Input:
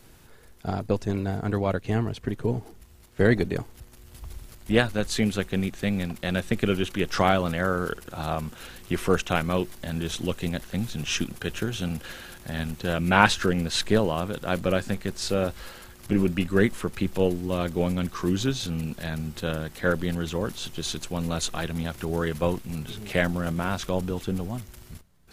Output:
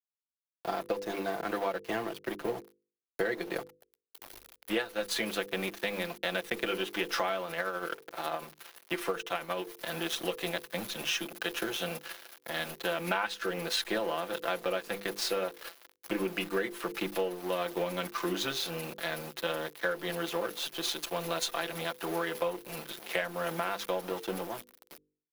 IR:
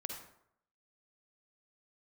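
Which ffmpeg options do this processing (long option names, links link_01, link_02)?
-filter_complex "[0:a]acrusher=bits=7:mix=0:aa=0.5,aecho=1:1:5.9:0.78,aeval=exprs='sgn(val(0))*max(abs(val(0))-0.015,0)':channel_layout=same,acrossover=split=320 6800:gain=0.0708 1 0.2[link_01][link_02][link_03];[link_01][link_02][link_03]amix=inputs=3:normalize=0,bandreject=frequency=50:width_type=h:width=6,bandreject=frequency=100:width_type=h:width=6,bandreject=frequency=150:width_type=h:width=6,bandreject=frequency=200:width_type=h:width=6,bandreject=frequency=250:width_type=h:width=6,bandreject=frequency=300:width_type=h:width=6,bandreject=frequency=350:width_type=h:width=6,bandreject=frequency=400:width_type=h:width=6,bandreject=frequency=450:width_type=h:width=6,bandreject=frequency=500:width_type=h:width=6,acompressor=threshold=-30dB:ratio=8,asettb=1/sr,asplit=3[link_04][link_05][link_06];[link_04]atrim=end=7.434[link_07];[link_05]atrim=start=7.43:end=9.7,asetpts=PTS-STARTPTS,afade=type=in:duration=0.004:curve=qsin,afade=type=out:start_time=2.266:duration=0.004:curve=qsin,tremolo=f=12:d=0.45[link_08];[link_06]atrim=start=9.696[link_09];[link_07][link_08]acrossfade=duration=0.004:curve1=hsin:curve2=qsin[link_10];[link_10][link_09]acrossfade=duration=0.004:curve1=qsin:curve2=hsin,acompressor=mode=upward:threshold=-47dB:ratio=2.5,aexciter=amount=6.9:drive=2.2:freq=10000,volume=2dB"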